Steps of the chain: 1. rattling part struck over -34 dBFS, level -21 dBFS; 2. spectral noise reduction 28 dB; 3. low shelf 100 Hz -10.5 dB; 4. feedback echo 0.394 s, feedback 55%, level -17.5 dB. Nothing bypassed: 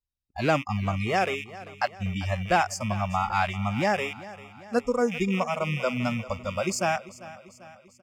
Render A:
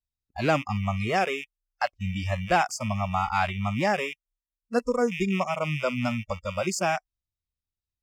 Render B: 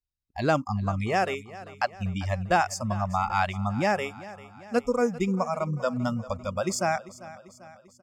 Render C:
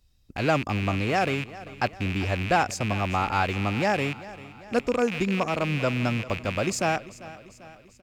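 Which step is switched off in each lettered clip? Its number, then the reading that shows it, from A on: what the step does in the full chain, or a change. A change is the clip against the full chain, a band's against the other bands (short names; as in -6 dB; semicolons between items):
4, echo-to-direct -16.0 dB to none; 1, 4 kHz band -3.0 dB; 2, 1 kHz band -1.5 dB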